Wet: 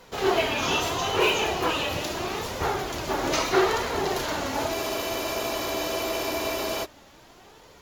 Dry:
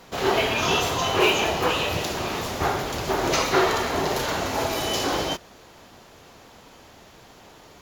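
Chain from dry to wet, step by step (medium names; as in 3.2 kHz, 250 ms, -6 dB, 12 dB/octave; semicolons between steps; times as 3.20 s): flange 0.78 Hz, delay 1.9 ms, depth 1.8 ms, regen +53%; spectral freeze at 4.77 s, 2.07 s; trim +1.5 dB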